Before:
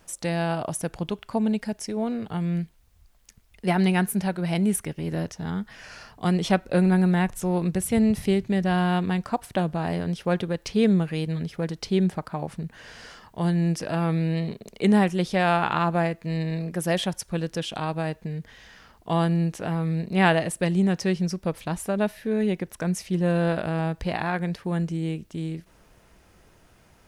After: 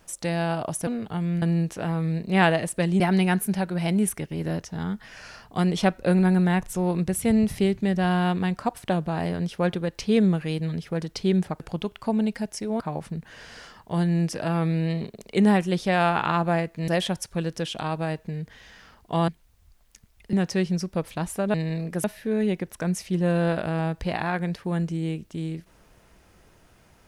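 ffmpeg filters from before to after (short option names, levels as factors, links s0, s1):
-filter_complex "[0:a]asplit=11[s0][s1][s2][s3][s4][s5][s6][s7][s8][s9][s10];[s0]atrim=end=0.872[s11];[s1]atrim=start=2.068:end=2.622[s12];[s2]atrim=start=19.248:end=20.832[s13];[s3]atrim=start=3.668:end=12.272[s14];[s4]atrim=start=0.868:end=2.072[s15];[s5]atrim=start=12.268:end=16.352[s16];[s6]atrim=start=16.848:end=19.252[s17];[s7]atrim=start=2.618:end=3.672[s18];[s8]atrim=start=20.828:end=22.042[s19];[s9]atrim=start=16.348:end=16.852[s20];[s10]atrim=start=22.038[s21];[s11][s12]acrossfade=d=0.004:c1=hsin:c2=hsin[s22];[s22][s13]acrossfade=d=0.004:c1=hsin:c2=hsin[s23];[s23][s14]acrossfade=d=0.004:c1=hsin:c2=hsin[s24];[s24][s15]acrossfade=d=0.004:c1=hsin:c2=hsin[s25];[s25][s16]acrossfade=d=0.004:c1=hsin:c2=hsin[s26];[s26][s17]acrossfade=d=0.004:c1=hsin:c2=hsin[s27];[s27][s18]acrossfade=d=0.004:c1=hsin:c2=hsin[s28];[s28][s19]acrossfade=d=0.004:c1=hsin:c2=hsin[s29];[s29][s20]acrossfade=d=0.004:c1=hsin:c2=hsin[s30];[s30][s21]acrossfade=d=0.004:c1=hsin:c2=hsin"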